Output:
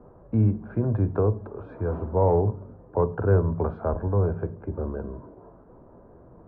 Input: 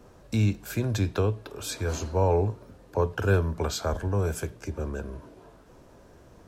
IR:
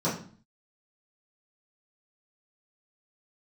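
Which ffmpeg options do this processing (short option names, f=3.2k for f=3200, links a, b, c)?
-filter_complex "[0:a]lowpass=f=1.2k:w=0.5412,lowpass=f=1.2k:w=1.3066,acontrast=33,asplit=2[a][b];[1:a]atrim=start_sample=2205,lowshelf=f=170:g=9.5[c];[b][c]afir=irnorm=-1:irlink=0,volume=-28.5dB[d];[a][d]amix=inputs=2:normalize=0,volume=-3dB"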